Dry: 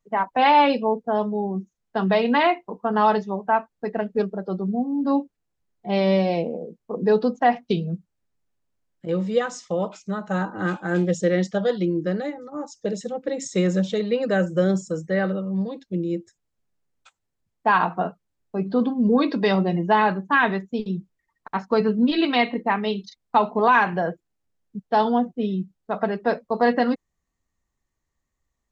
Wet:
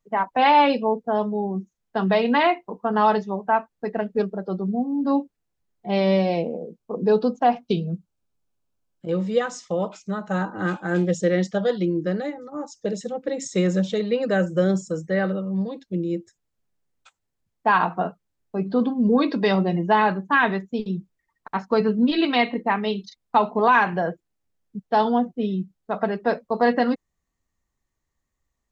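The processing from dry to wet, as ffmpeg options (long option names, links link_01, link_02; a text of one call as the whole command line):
ffmpeg -i in.wav -filter_complex "[0:a]asettb=1/sr,asplit=3[link_01][link_02][link_03];[link_01]atrim=end=6.774[link_04];[link_02]atrim=start=6.77:end=9.12,asetpts=PTS-STARTPTS,afade=type=in:duration=0.004:curve=qsin,afade=type=out:start_time=2.346:duration=0.004:curve=qsin,equalizer=frequency=1900:width=7.3:gain=-14[link_05];[link_03]atrim=start=9.116[link_06];[link_04][link_05]acrossfade=duration=0.004:curve1=hsin:curve2=qsin[link_07];[link_07][link_06]acrossfade=duration=0.004:curve1=qsin:curve2=hsin" out.wav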